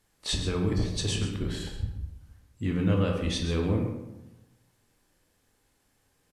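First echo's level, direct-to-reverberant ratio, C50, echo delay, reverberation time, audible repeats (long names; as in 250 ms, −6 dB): −10.5 dB, 1.0 dB, 4.0 dB, 131 ms, 0.95 s, 1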